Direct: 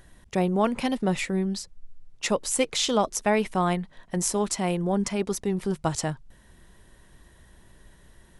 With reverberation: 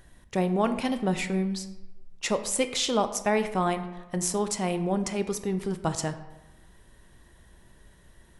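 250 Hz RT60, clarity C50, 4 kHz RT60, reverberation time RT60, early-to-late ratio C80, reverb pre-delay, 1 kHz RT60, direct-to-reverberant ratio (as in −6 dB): 1.0 s, 11.0 dB, 0.65 s, 1.1 s, 13.5 dB, 15 ms, 1.1 s, 9.0 dB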